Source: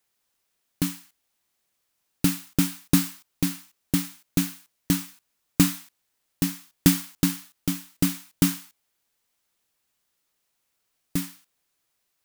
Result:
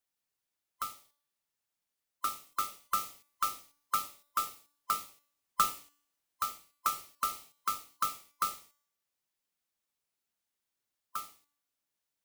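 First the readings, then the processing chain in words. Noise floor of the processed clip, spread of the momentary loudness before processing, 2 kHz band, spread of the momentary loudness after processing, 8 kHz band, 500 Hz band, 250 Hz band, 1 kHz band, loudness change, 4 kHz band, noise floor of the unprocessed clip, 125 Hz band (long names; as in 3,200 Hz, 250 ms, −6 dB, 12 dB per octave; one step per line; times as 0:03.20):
below −85 dBFS, 9 LU, −10.0 dB, 12 LU, −10.0 dB, −14.5 dB, −34.5 dB, +10.5 dB, −9.5 dB, −10.0 dB, −76 dBFS, −33.0 dB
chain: neighbouring bands swapped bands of 1,000 Hz
speech leveller within 5 dB 0.5 s
tuned comb filter 290 Hz, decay 0.64 s, mix 50%
level −4.5 dB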